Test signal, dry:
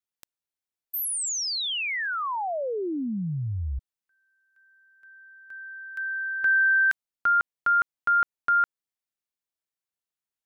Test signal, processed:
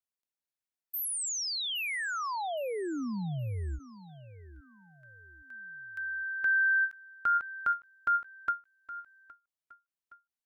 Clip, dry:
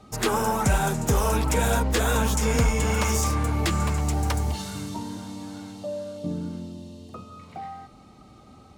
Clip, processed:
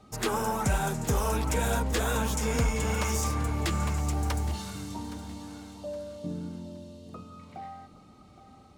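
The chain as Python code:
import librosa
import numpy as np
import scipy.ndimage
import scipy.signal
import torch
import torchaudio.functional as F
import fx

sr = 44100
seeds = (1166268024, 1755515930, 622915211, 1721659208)

y = fx.echo_feedback(x, sr, ms=817, feedback_pct=33, wet_db=-16.0)
y = fx.end_taper(y, sr, db_per_s=290.0)
y = y * 10.0 ** (-5.0 / 20.0)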